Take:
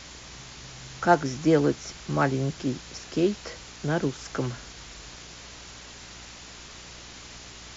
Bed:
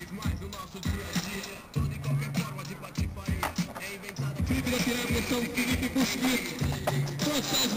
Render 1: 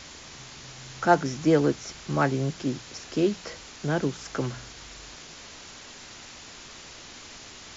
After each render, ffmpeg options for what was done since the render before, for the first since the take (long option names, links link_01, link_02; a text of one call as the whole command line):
ffmpeg -i in.wav -af "bandreject=frequency=60:width_type=h:width=4,bandreject=frequency=120:width_type=h:width=4,bandreject=frequency=180:width_type=h:width=4" out.wav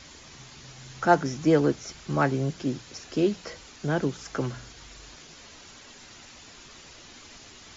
ffmpeg -i in.wav -af "afftdn=noise_reduction=6:noise_floor=-45" out.wav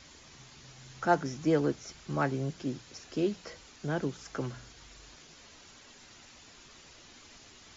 ffmpeg -i in.wav -af "volume=-6dB" out.wav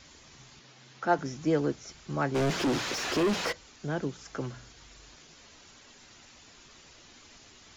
ffmpeg -i in.wav -filter_complex "[0:a]asettb=1/sr,asplit=3[link_01][link_02][link_03];[link_01]atrim=end=0.594[link_04];[link_02]atrim=start=0.59:end=1.19,asetpts=PTS-STARTPTS,afade=type=in:duration=0.004:curve=qsin,afade=type=out:start_time=0.596:duration=0.004:curve=qsin,highpass=180,lowpass=5400[link_05];[link_03]atrim=start=1.186[link_06];[link_04][link_05]acrossfade=duration=0.004:curve1=hsin:curve2=qsin[link_07];[link_07][link_06]acrossfade=duration=0.004:curve1=qsin:curve2=hsin,asplit=3[link_08][link_09][link_10];[link_08]afade=type=out:start_time=2.34:duration=0.02[link_11];[link_09]asplit=2[link_12][link_13];[link_13]highpass=frequency=720:poles=1,volume=37dB,asoftclip=type=tanh:threshold=-19dB[link_14];[link_12][link_14]amix=inputs=2:normalize=0,lowpass=frequency=2100:poles=1,volume=-6dB,afade=type=in:start_time=2.34:duration=0.02,afade=type=out:start_time=3.51:duration=0.02[link_15];[link_10]afade=type=in:start_time=3.51:duration=0.02[link_16];[link_11][link_15][link_16]amix=inputs=3:normalize=0" out.wav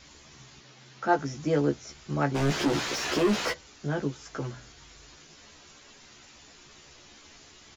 ffmpeg -i in.wav -filter_complex "[0:a]asplit=2[link_01][link_02];[link_02]adelay=14,volume=-3.5dB[link_03];[link_01][link_03]amix=inputs=2:normalize=0" out.wav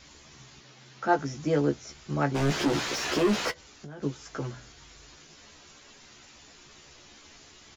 ffmpeg -i in.wav -filter_complex "[0:a]asplit=3[link_01][link_02][link_03];[link_01]afade=type=out:start_time=3.5:duration=0.02[link_04];[link_02]acompressor=threshold=-38dB:ratio=16:attack=3.2:release=140:knee=1:detection=peak,afade=type=in:start_time=3.5:duration=0.02,afade=type=out:start_time=4.02:duration=0.02[link_05];[link_03]afade=type=in:start_time=4.02:duration=0.02[link_06];[link_04][link_05][link_06]amix=inputs=3:normalize=0" out.wav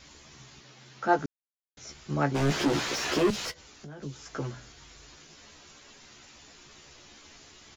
ffmpeg -i in.wav -filter_complex "[0:a]asettb=1/sr,asplit=3[link_01][link_02][link_03];[link_01]atrim=end=3.304[link_04];[link_02]atrim=start=3.3:end=4.29,asetpts=PTS-STARTPTS,afade=type=in:duration=0.004:curve=qsin,afade=type=out:start_time=0.986:duration=0.004:curve=qsin,acrossover=split=140|3000[link_05][link_06][link_07];[link_06]acompressor=threshold=-41dB:ratio=3:attack=3.2:release=140:knee=2.83:detection=peak[link_08];[link_05][link_08][link_07]amix=inputs=3:normalize=0[link_09];[link_03]atrim=start=4.286[link_10];[link_04][link_09]acrossfade=duration=0.004:curve1=hsin:curve2=qsin[link_11];[link_11][link_10]acrossfade=duration=0.004:curve1=qsin:curve2=hsin,asplit=3[link_12][link_13][link_14];[link_12]atrim=end=1.26,asetpts=PTS-STARTPTS,afade=type=out:start_time=1.256:duration=0.004:curve=hsin[link_15];[link_13]atrim=start=1.26:end=1.77,asetpts=PTS-STARTPTS,volume=0[link_16];[link_14]atrim=start=1.77,asetpts=PTS-STARTPTS,afade=type=in:duration=0.004:curve=hsin[link_17];[link_15][link_16][link_17]concat=n=3:v=0:a=1" out.wav